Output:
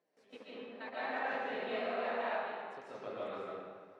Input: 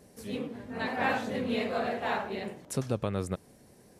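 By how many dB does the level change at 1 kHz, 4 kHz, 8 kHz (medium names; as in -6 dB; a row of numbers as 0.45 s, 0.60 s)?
-5.0 dB, -8.0 dB, under -25 dB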